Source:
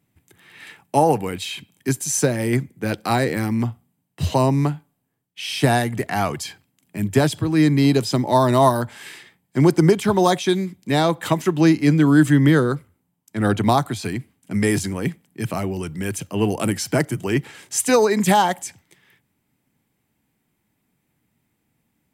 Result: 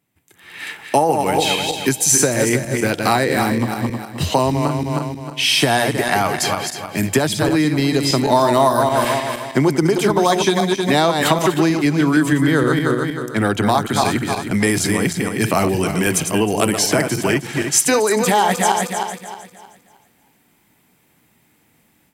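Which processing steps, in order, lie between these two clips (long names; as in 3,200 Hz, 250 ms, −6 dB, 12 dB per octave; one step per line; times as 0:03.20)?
feedback delay that plays each chunk backwards 156 ms, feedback 54%, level −6.5 dB
downward compressor 6 to 1, threshold −22 dBFS, peak gain reduction 13 dB
low-shelf EQ 250 Hz −9 dB
automatic gain control gain up to 14 dB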